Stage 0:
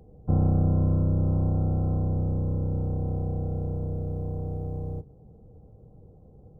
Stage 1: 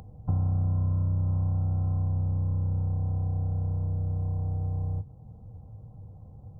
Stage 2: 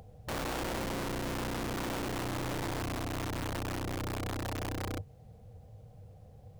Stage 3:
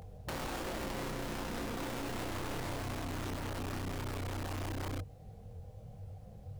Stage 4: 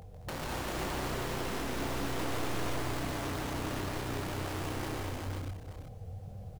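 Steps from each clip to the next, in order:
upward compression, threshold −46 dBFS; graphic EQ with 15 bands 100 Hz +10 dB, 400 Hz −11 dB, 1,000 Hz +8 dB; downward compressor 3 to 1, threshold −27 dBFS, peak gain reduction 11 dB
flat-topped bell 560 Hz +9 dB 1 octave; wrap-around overflow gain 24.5 dB; background noise pink −67 dBFS; level −7 dB
multi-voice chorus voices 6, 1.2 Hz, delay 22 ms, depth 3 ms; brickwall limiter −37 dBFS, peak gain reduction 9 dB; level +5.5 dB
multi-tap delay 145/215/227/393/502/878 ms −4/−7/−6.5/−4/−4/−13 dB

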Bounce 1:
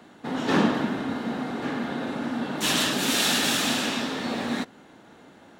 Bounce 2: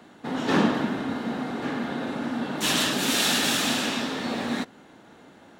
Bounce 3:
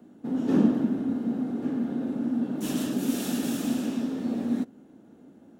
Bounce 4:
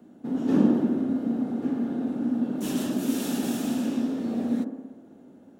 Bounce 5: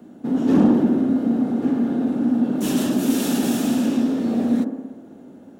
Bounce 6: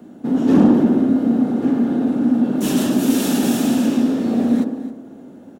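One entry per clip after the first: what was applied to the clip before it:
no processing that can be heard
octave-band graphic EQ 250/1,000/2,000/4,000/8,000 Hz +9/−8/−10/−11/−4 dB; level −5 dB
delay with a band-pass on its return 61 ms, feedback 71%, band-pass 540 Hz, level −5 dB
soft clipping −15 dBFS, distortion −18 dB; level +7.5 dB
single-tap delay 266 ms −16 dB; level +3 dB

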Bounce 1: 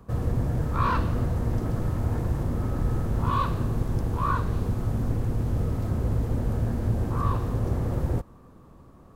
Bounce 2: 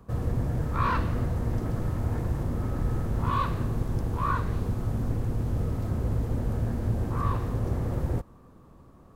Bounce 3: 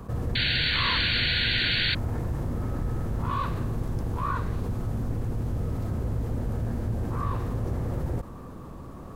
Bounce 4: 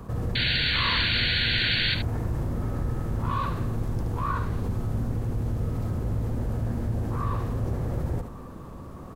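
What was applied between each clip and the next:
dynamic equaliser 2,000 Hz, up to +5 dB, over −49 dBFS, Q 2.4; level −2 dB
sound drawn into the spectrogram noise, 0:00.35–0:01.95, 1,400–4,600 Hz −22 dBFS; envelope flattener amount 50%; level −5 dB
single-tap delay 73 ms −8.5 dB

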